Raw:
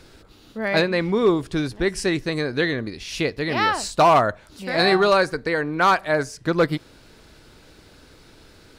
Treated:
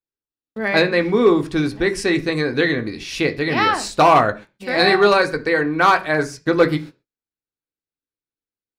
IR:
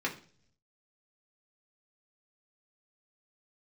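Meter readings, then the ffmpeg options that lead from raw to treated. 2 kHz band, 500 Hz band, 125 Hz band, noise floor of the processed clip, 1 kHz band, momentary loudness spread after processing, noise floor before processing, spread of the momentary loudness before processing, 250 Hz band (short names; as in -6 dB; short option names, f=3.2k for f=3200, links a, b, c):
+4.5 dB, +3.5 dB, +2.0 dB, under -85 dBFS, +3.0 dB, 9 LU, -51 dBFS, 10 LU, +4.0 dB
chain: -filter_complex "[0:a]agate=range=-53dB:threshold=-38dB:ratio=16:detection=peak,asplit=2[a][b];[1:a]atrim=start_sample=2205,atrim=end_sample=6174[c];[b][c]afir=irnorm=-1:irlink=0,volume=-6.5dB[d];[a][d]amix=inputs=2:normalize=0,volume=-1dB"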